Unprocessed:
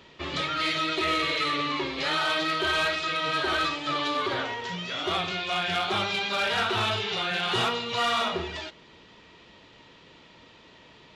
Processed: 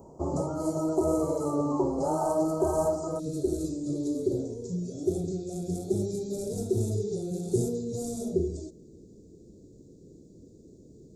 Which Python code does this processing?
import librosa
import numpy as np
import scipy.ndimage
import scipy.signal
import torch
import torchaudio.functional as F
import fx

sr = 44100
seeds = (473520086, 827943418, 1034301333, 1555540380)

y = fx.ellip_bandstop(x, sr, low_hz=fx.steps((0.0, 830.0), (3.18, 400.0)), high_hz=7400.0, order=3, stop_db=50)
y = y * librosa.db_to_amplitude(7.0)